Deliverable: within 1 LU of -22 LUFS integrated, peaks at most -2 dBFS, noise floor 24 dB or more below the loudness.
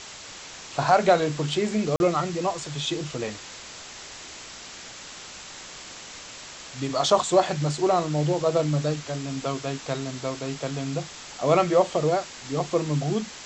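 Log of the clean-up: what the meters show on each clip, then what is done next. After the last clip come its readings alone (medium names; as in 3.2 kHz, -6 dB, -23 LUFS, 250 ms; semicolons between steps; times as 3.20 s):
dropouts 1; longest dropout 41 ms; noise floor -42 dBFS; noise floor target -49 dBFS; loudness -25.0 LUFS; peak level -7.0 dBFS; loudness target -22.0 LUFS
-> interpolate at 1.96 s, 41 ms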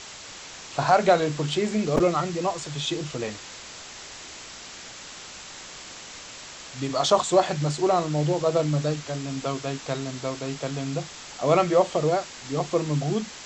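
dropouts 0; noise floor -42 dBFS; noise floor target -49 dBFS
-> noise reduction 7 dB, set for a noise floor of -42 dBFS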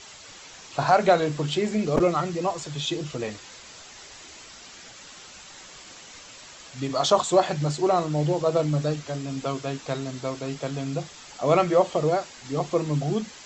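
noise floor -46 dBFS; noise floor target -49 dBFS
-> noise reduction 6 dB, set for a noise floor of -46 dBFS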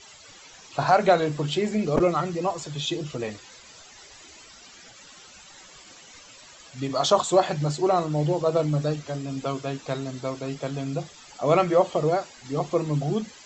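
noise floor -49 dBFS; loudness -25.0 LUFS; peak level -7.0 dBFS; loudness target -22.0 LUFS
-> trim +3 dB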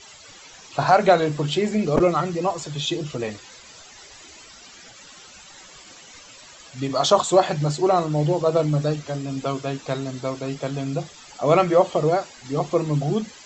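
loudness -22.0 LUFS; peak level -4.0 dBFS; noise floor -46 dBFS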